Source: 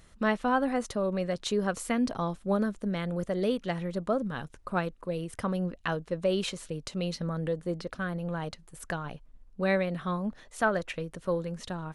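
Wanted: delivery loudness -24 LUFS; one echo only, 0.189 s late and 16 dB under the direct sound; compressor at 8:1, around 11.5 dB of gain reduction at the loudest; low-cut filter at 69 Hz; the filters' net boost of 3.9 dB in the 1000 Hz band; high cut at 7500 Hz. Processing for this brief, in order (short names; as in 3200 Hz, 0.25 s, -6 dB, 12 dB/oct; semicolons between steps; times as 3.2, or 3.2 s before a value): HPF 69 Hz; LPF 7500 Hz; bell 1000 Hz +5 dB; compressor 8:1, threshold -30 dBFS; echo 0.189 s -16 dB; gain +12 dB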